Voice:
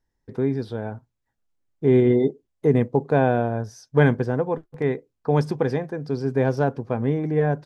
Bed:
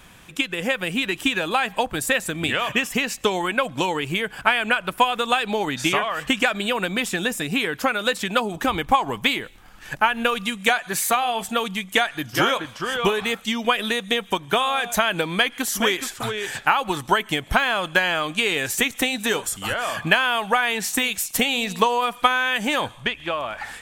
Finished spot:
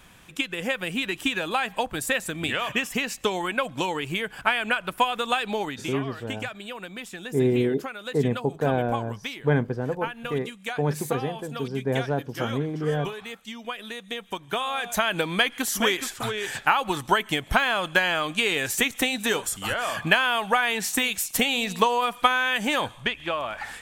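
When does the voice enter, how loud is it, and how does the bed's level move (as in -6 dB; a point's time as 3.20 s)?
5.50 s, -5.0 dB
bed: 5.61 s -4 dB
5.91 s -13.5 dB
13.84 s -13.5 dB
15.20 s -2 dB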